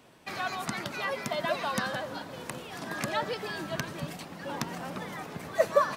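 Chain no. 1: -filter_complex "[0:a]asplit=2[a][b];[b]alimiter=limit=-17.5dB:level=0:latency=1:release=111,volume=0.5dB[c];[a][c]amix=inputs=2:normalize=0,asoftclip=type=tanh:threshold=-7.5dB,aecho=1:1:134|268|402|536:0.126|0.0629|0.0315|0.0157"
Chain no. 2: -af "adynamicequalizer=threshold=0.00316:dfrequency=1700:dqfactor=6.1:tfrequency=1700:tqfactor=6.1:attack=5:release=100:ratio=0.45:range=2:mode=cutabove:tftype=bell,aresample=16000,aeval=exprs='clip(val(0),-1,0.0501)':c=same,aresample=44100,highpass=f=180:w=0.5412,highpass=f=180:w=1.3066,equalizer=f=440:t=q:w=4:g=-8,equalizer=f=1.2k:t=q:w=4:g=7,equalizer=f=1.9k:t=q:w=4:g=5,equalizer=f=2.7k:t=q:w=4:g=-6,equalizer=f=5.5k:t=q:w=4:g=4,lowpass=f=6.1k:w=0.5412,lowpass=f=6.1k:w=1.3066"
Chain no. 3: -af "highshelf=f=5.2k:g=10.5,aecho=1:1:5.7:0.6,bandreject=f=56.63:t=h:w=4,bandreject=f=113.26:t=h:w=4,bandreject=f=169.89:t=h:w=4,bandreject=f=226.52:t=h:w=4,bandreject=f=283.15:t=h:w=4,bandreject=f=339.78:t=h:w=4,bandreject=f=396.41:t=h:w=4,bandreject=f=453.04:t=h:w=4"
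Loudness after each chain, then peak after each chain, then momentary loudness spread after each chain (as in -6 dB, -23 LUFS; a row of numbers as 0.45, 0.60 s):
-28.0, -33.0, -31.0 LUFS; -9.0, -11.0, -4.5 dBFS; 9, 10, 9 LU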